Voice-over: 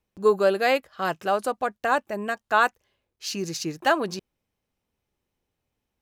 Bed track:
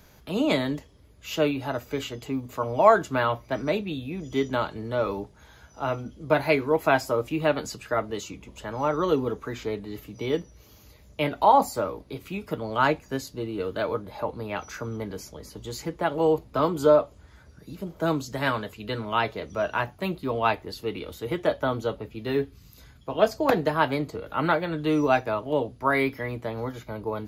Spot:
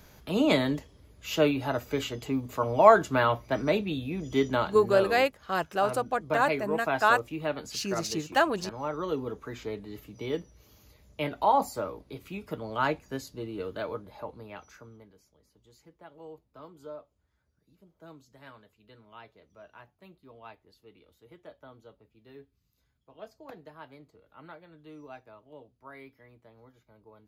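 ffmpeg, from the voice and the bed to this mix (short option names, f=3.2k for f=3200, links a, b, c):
-filter_complex "[0:a]adelay=4500,volume=-2.5dB[a];[1:a]volume=2.5dB,afade=t=out:st=4.47:d=0.74:silence=0.398107,afade=t=in:st=9.12:d=0.46:silence=0.749894,afade=t=out:st=13.58:d=1.56:silence=0.112202[b];[a][b]amix=inputs=2:normalize=0"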